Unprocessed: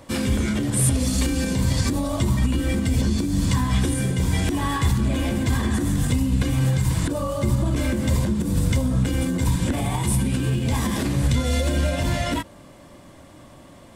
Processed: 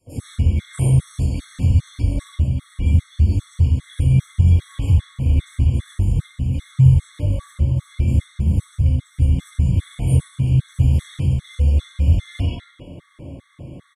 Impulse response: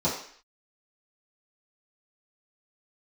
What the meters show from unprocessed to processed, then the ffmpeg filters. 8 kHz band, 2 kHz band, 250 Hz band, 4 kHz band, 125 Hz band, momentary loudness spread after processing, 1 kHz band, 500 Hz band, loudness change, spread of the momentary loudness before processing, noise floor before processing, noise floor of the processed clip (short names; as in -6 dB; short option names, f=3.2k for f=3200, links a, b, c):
under -10 dB, under -10 dB, -5.0 dB, n/a, +5.5 dB, 8 LU, under -10 dB, -9.5 dB, +3.0 dB, 2 LU, -46 dBFS, -53 dBFS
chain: -filter_complex "[0:a]acrossover=split=150|1300[a][b][c];[b]asoftclip=type=tanh:threshold=-27dB[d];[a][d][c]amix=inputs=3:normalize=0,acrossover=split=140|3000[e][f][g];[f]acompressor=threshold=-48dB:ratio=2[h];[e][h][g]amix=inputs=3:normalize=0,acrossover=split=1100|5400[i][j][k];[i]adelay=60[l];[j]adelay=130[m];[l][m][k]amix=inputs=3:normalize=0,asplit=2[n][o];[o]acrusher=samples=25:mix=1:aa=0.000001:lfo=1:lforange=40:lforate=1.2,volume=-6.5dB[p];[n][p]amix=inputs=2:normalize=0,acompressor=threshold=-23dB:ratio=6[q];[1:a]atrim=start_sample=2205,asetrate=22932,aresample=44100[r];[q][r]afir=irnorm=-1:irlink=0,afftfilt=real='re*gt(sin(2*PI*2.5*pts/sr)*(1-2*mod(floor(b*sr/1024/1100),2)),0)':imag='im*gt(sin(2*PI*2.5*pts/sr)*(1-2*mod(floor(b*sr/1024/1100),2)),0)':win_size=1024:overlap=0.75,volume=-12dB"